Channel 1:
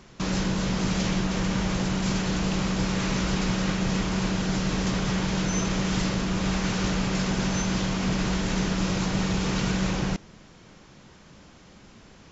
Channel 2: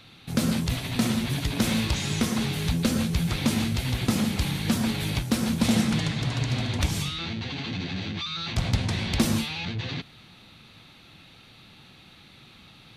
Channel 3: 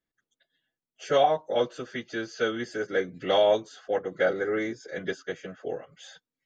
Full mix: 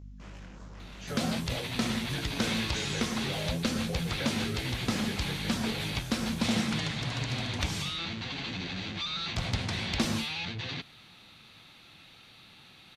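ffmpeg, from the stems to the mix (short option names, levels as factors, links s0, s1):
-filter_complex "[0:a]afwtdn=0.02,highshelf=f=3000:g=11.5,asoftclip=type=tanh:threshold=0.0376,volume=0.316[s0];[1:a]acrossover=split=7000[s1][s2];[s2]acompressor=threshold=0.00355:ratio=4:attack=1:release=60[s3];[s1][s3]amix=inputs=2:normalize=0,adelay=800,volume=0.841[s4];[2:a]aeval=exprs='val(0)+0.0141*(sin(2*PI*50*n/s)+sin(2*PI*2*50*n/s)/2+sin(2*PI*3*50*n/s)/3+sin(2*PI*4*50*n/s)/4+sin(2*PI*5*50*n/s)/5)':c=same,volume=1.12[s5];[s0][s5]amix=inputs=2:normalize=0,flanger=delay=17.5:depth=7.6:speed=2.7,acompressor=threshold=0.0178:ratio=6,volume=1[s6];[s4][s6]amix=inputs=2:normalize=0,lowshelf=f=480:g=-6.5"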